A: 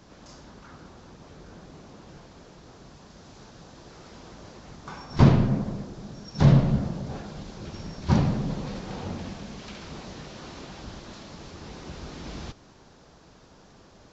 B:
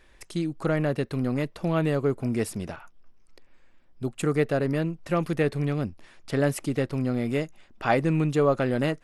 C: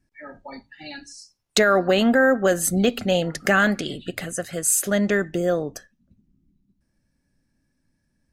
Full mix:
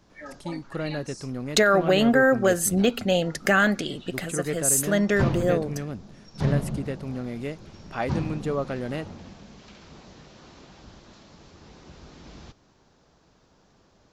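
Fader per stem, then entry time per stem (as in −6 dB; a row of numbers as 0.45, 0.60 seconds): −7.5, −6.0, −1.5 decibels; 0.00, 0.10, 0.00 seconds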